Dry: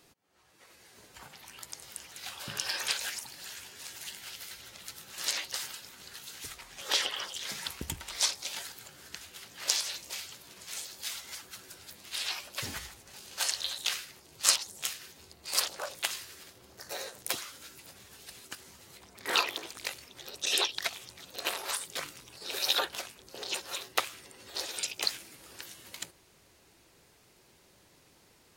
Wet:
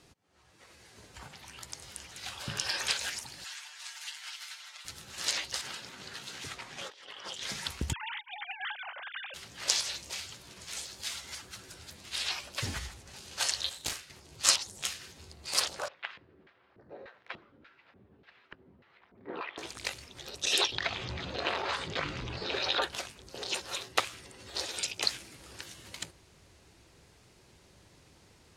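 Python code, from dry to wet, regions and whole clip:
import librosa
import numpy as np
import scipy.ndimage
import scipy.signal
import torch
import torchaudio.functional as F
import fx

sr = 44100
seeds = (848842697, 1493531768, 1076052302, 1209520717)

y = fx.chain(x, sr, fx.highpass(hz=870.0, slope=24),
    fx.high_shelf(hz=9100.0, db=-8.0),
    fx.comb(ms=6.7, depth=0.7), at=(3.44, 4.85))
y = fx.chain(y, sr, fx.highpass(hz=140.0, slope=12),
    fx.high_shelf(hz=5700.0, db=-9.5),
    fx.over_compress(threshold_db=-46.0, ratio=-1.0), at=(5.61, 7.42))
y = fx.chain(y, sr, fx.sine_speech(),
    fx.over_compress(threshold_db=-41.0, ratio=-0.5), at=(7.93, 9.34))
y = fx.chain(y, sr, fx.self_delay(depth_ms=0.56),
    fx.doubler(ms=40.0, db=-7.0),
    fx.upward_expand(threshold_db=-45.0, expansion=1.5), at=(13.69, 14.1))
y = fx.chain(y, sr, fx.filter_lfo_bandpass(shape='square', hz=1.7, low_hz=280.0, high_hz=1700.0, q=1.1),
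    fx.air_absorb(metres=340.0), at=(15.88, 19.58))
y = fx.chain(y, sr, fx.air_absorb(metres=220.0),
    fx.notch(hz=5600.0, q=19.0),
    fx.env_flatten(amount_pct=50), at=(20.72, 22.82))
y = scipy.signal.sosfilt(scipy.signal.butter(2, 9200.0, 'lowpass', fs=sr, output='sos'), y)
y = fx.peak_eq(y, sr, hz=65.0, db=9.0, octaves=2.5)
y = y * librosa.db_to_amplitude(1.0)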